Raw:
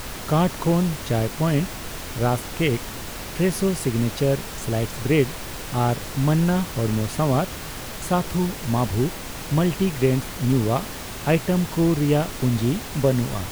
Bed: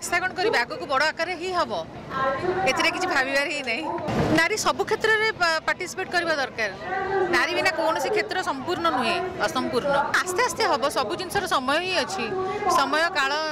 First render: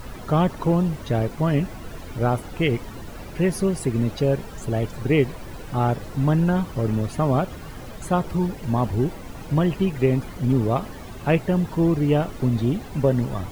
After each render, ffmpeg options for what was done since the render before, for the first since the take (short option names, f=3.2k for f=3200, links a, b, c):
-af "afftdn=nr=13:nf=-34"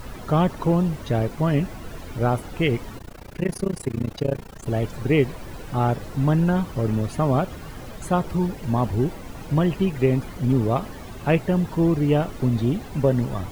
-filter_complex "[0:a]asettb=1/sr,asplit=3[a][b][c];[a]atrim=end=2.984[d];[b]atrim=start=2.98:end=4.66,asetpts=PTS-STARTPTS,afade=t=in:d=0.004:c=qsin,afade=t=out:st=1.676:d=0.004:c=qsin,tremolo=f=29:d=0.974[e];[c]atrim=start=4.656[f];[d][e]acrossfade=d=0.004:c1=hsin:c2=qsin[g];[g][f]acrossfade=d=0.004:c1=qsin:c2=hsin"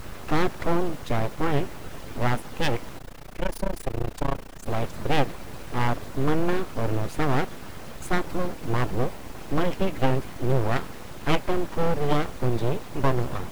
-af "aeval=exprs='abs(val(0))':c=same"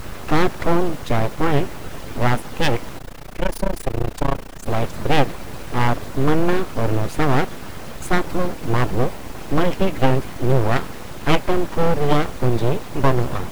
-af "volume=6dB"